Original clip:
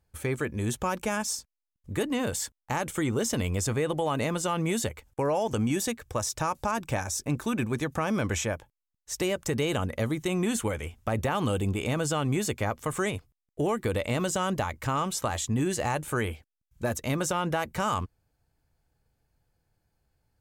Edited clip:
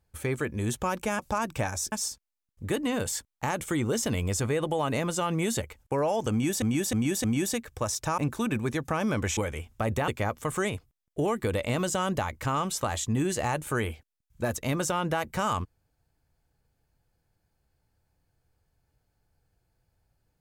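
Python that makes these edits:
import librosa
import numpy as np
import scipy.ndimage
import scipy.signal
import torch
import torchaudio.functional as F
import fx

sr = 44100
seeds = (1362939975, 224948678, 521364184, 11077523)

y = fx.edit(x, sr, fx.repeat(start_s=5.58, length_s=0.31, count=4),
    fx.move(start_s=6.52, length_s=0.73, to_s=1.19),
    fx.cut(start_s=8.44, length_s=2.2),
    fx.cut(start_s=11.35, length_s=1.14), tone=tone)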